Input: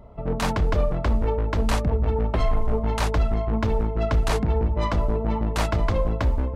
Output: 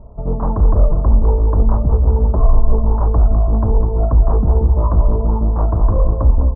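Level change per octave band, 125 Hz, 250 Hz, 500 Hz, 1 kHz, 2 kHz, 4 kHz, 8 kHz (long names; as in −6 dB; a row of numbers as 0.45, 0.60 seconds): +9.5 dB, +4.0 dB, +3.0 dB, +2.5 dB, below −15 dB, below −40 dB, below −40 dB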